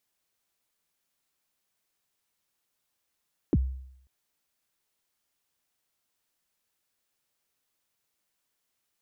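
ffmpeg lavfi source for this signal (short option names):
-f lavfi -i "aevalsrc='0.141*pow(10,-3*t/0.72)*sin(2*PI*(400*0.04/log(65/400)*(exp(log(65/400)*min(t,0.04)/0.04)-1)+65*max(t-0.04,0)))':d=0.54:s=44100"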